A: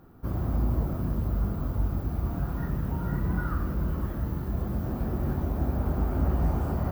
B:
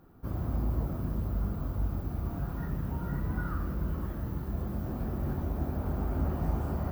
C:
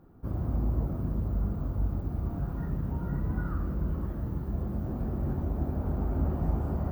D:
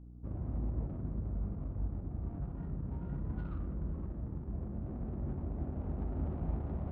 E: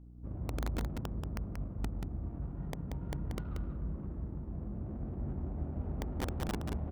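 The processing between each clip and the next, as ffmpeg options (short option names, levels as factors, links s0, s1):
-af "bandreject=f=59.68:t=h:w=4,bandreject=f=119.36:t=h:w=4,bandreject=f=179.04:t=h:w=4,bandreject=f=238.72:t=h:w=4,bandreject=f=298.4:t=h:w=4,bandreject=f=358.08:t=h:w=4,bandreject=f=417.76:t=h:w=4,bandreject=f=477.44:t=h:w=4,bandreject=f=537.12:t=h:w=4,bandreject=f=596.8:t=h:w=4,bandreject=f=656.48:t=h:w=4,bandreject=f=716.16:t=h:w=4,bandreject=f=775.84:t=h:w=4,bandreject=f=835.52:t=h:w=4,bandreject=f=895.2:t=h:w=4,bandreject=f=954.88:t=h:w=4,bandreject=f=1014.56:t=h:w=4,bandreject=f=1074.24:t=h:w=4,bandreject=f=1133.92:t=h:w=4,bandreject=f=1193.6:t=h:w=4,bandreject=f=1253.28:t=h:w=4,bandreject=f=1312.96:t=h:w=4,bandreject=f=1372.64:t=h:w=4,bandreject=f=1432.32:t=h:w=4,bandreject=f=1492:t=h:w=4,bandreject=f=1551.68:t=h:w=4,bandreject=f=1611.36:t=h:w=4,bandreject=f=1671.04:t=h:w=4,bandreject=f=1730.72:t=h:w=4,bandreject=f=1790.4:t=h:w=4,bandreject=f=1850.08:t=h:w=4,bandreject=f=1909.76:t=h:w=4,bandreject=f=1969.44:t=h:w=4,bandreject=f=2029.12:t=h:w=4,bandreject=f=2088.8:t=h:w=4,volume=0.668"
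-af "tiltshelf=f=1300:g=5,volume=0.708"
-af "adynamicsmooth=sensitivity=3.5:basefreq=690,aeval=exprs='val(0)+0.00794*(sin(2*PI*60*n/s)+sin(2*PI*2*60*n/s)/2+sin(2*PI*3*60*n/s)/3+sin(2*PI*4*60*n/s)/4+sin(2*PI*5*60*n/s)/5)':c=same,volume=0.422"
-filter_complex "[0:a]aeval=exprs='(mod(23.7*val(0)+1,2)-1)/23.7':c=same,asplit=2[s0][s1];[s1]aecho=0:1:183:0.531[s2];[s0][s2]amix=inputs=2:normalize=0,volume=0.841"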